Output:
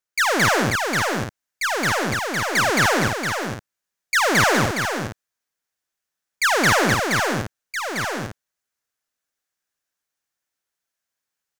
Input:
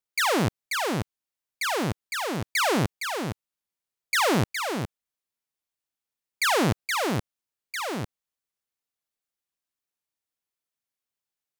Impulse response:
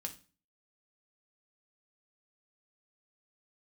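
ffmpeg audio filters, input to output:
-af "aeval=exprs='0.15*(cos(1*acos(clip(val(0)/0.15,-1,1)))-cos(1*PI/2))+0.00211*(cos(4*acos(clip(val(0)/0.15,-1,1)))-cos(4*PI/2))+0.00188*(cos(8*acos(clip(val(0)/0.15,-1,1)))-cos(8*PI/2))':channel_layout=same,equalizer=frequency=630:width_type=o:width=0.67:gain=3,equalizer=frequency=1600:width_type=o:width=0.67:gain=8,equalizer=frequency=6300:width_type=o:width=0.67:gain=5,aecho=1:1:218.7|271.1:1|0.562"

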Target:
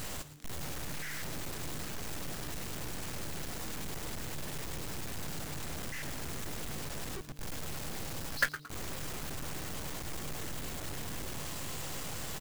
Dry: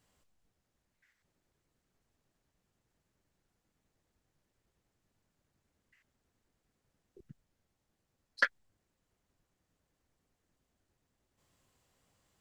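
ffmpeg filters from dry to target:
ffmpeg -i in.wav -filter_complex "[0:a]aeval=exprs='val(0)+0.5*0.0447*sgn(val(0))':channel_layout=same,acrusher=bits=5:dc=4:mix=0:aa=0.000001,asplit=5[link_01][link_02][link_03][link_04][link_05];[link_02]adelay=112,afreqshift=-150,volume=-13dB[link_06];[link_03]adelay=224,afreqshift=-300,volume=-21.6dB[link_07];[link_04]adelay=336,afreqshift=-450,volume=-30.3dB[link_08];[link_05]adelay=448,afreqshift=-600,volume=-38.9dB[link_09];[link_01][link_06][link_07][link_08][link_09]amix=inputs=5:normalize=0,volume=-3dB" out.wav

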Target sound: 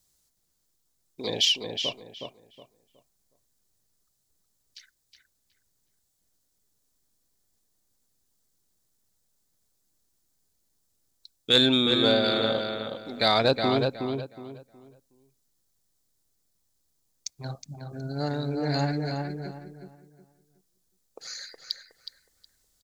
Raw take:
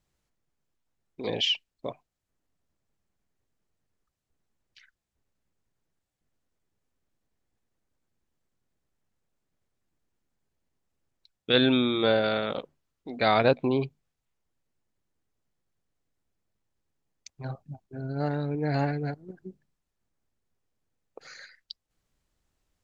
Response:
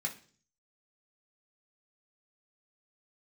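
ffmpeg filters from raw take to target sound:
-filter_complex "[0:a]aexciter=amount=3.1:drive=8.3:freq=3700,asoftclip=type=tanh:threshold=-6dB,asplit=2[link_01][link_02];[link_02]adelay=367,lowpass=frequency=3000:poles=1,volume=-4.5dB,asplit=2[link_03][link_04];[link_04]adelay=367,lowpass=frequency=3000:poles=1,volume=0.28,asplit=2[link_05][link_06];[link_06]adelay=367,lowpass=frequency=3000:poles=1,volume=0.28,asplit=2[link_07][link_08];[link_08]adelay=367,lowpass=frequency=3000:poles=1,volume=0.28[link_09];[link_01][link_03][link_05][link_07][link_09]amix=inputs=5:normalize=0,asplit=2[link_10][link_11];[1:a]atrim=start_sample=2205,lowpass=3000[link_12];[link_11][link_12]afir=irnorm=-1:irlink=0,volume=-22dB[link_13];[link_10][link_13]amix=inputs=2:normalize=0"

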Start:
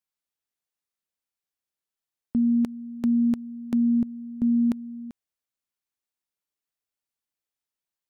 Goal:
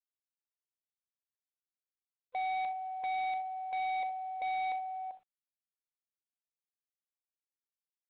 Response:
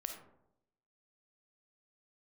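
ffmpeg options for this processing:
-filter_complex "[0:a]afftfilt=real='real(if(lt(b,1008),b+24*(1-2*mod(floor(b/24),2)),b),0)':imag='imag(if(lt(b,1008),b+24*(1-2*mod(floor(b/24),2)),b),0)':win_size=2048:overlap=0.75,bandpass=frequency=620:width_type=q:width=0.84:csg=0,asplit=2[link_01][link_02];[link_02]aecho=0:1:81:0.0944[link_03];[link_01][link_03]amix=inputs=2:normalize=0,adynamicequalizer=threshold=0.00891:dfrequency=510:dqfactor=2.3:tfrequency=510:tqfactor=2.3:attack=5:release=100:ratio=0.375:range=2:mode=boostabove:tftype=bell,asplit=2[link_04][link_05];[link_05]aecho=0:1:40|64:0.168|0.178[link_06];[link_04][link_06]amix=inputs=2:normalize=0,asoftclip=type=tanh:threshold=-27.5dB,volume=-5dB" -ar 8000 -c:a adpcm_g726 -b:a 32k

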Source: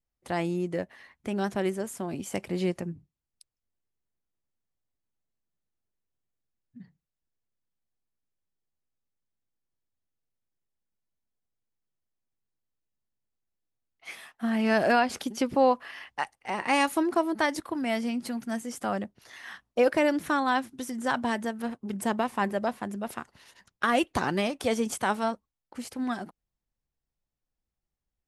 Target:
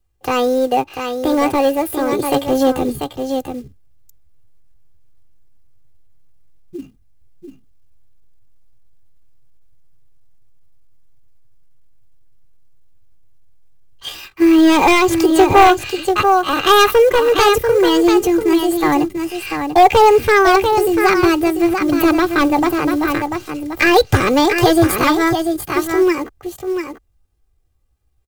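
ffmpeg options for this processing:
ffmpeg -i in.wav -filter_complex "[0:a]acrossover=split=120[link_01][link_02];[link_01]dynaudnorm=framelen=480:gausssize=11:maxgain=14dB[link_03];[link_03][link_02]amix=inputs=2:normalize=0,asetrate=64194,aresample=44100,atempo=0.686977,equalizer=frequency=590:width=7.8:gain=10.5,acrusher=bits=6:mode=log:mix=0:aa=0.000001,lowshelf=frequency=150:gain=8,aecho=1:1:691:0.422,aeval=exprs='0.562*sin(PI/2*2.82*val(0)/0.562)':channel_layout=same,aecho=1:1:2.5:0.6,volume=-1dB" out.wav

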